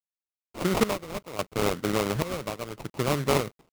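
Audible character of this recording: a quantiser's noise floor 10-bit, dither none; chopped level 0.72 Hz, depth 65%, duty 60%; aliases and images of a low sample rate 1.7 kHz, jitter 20%

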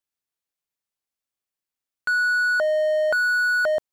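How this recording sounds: noise floor -89 dBFS; spectral tilt -7.0 dB/octave

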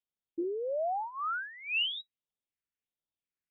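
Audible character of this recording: phasing stages 4, 1.4 Hz, lowest notch 750–2000 Hz; AAC

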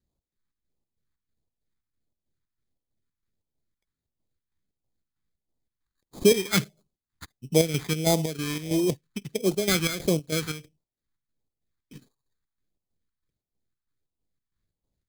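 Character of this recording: aliases and images of a low sample rate 2.8 kHz, jitter 0%; phasing stages 2, 1.5 Hz, lowest notch 560–1600 Hz; chopped level 3.1 Hz, depth 60%, duty 60%

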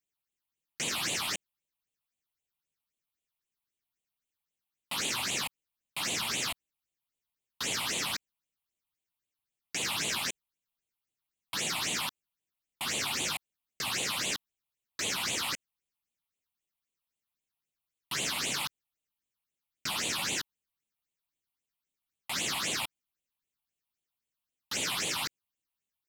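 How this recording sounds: phasing stages 6, 3.8 Hz, lowest notch 410–1500 Hz

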